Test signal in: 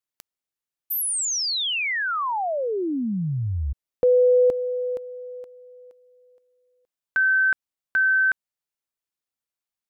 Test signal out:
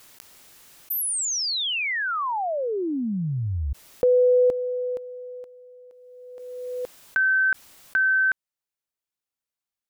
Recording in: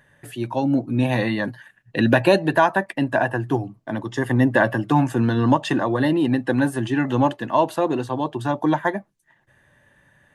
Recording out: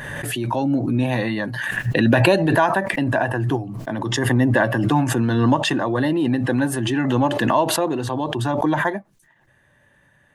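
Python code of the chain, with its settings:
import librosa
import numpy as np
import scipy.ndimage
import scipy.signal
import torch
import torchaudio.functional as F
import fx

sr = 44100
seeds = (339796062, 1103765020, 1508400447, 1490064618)

y = fx.pre_swell(x, sr, db_per_s=25.0)
y = F.gain(torch.from_numpy(y), -1.0).numpy()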